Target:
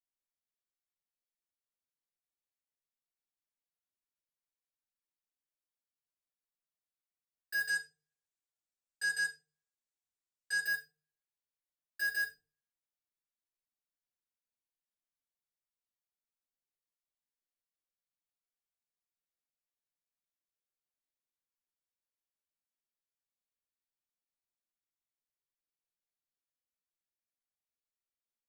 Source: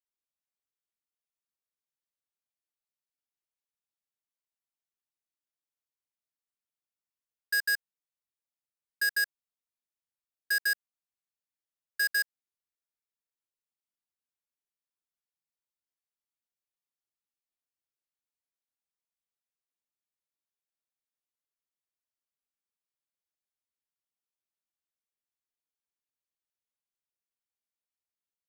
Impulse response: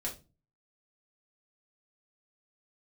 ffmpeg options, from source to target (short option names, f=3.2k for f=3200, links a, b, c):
-filter_complex "[0:a]asplit=3[a][b][c];[a]afade=t=out:st=7.67:d=0.02[d];[b]lowpass=f=7.8k:t=q:w=2.5,afade=t=in:st=7.67:d=0.02,afade=t=out:st=10.62:d=0.02[e];[c]afade=t=in:st=10.62:d=0.02[f];[d][e][f]amix=inputs=3:normalize=0[g];[1:a]atrim=start_sample=2205[h];[g][h]afir=irnorm=-1:irlink=0,volume=-7.5dB"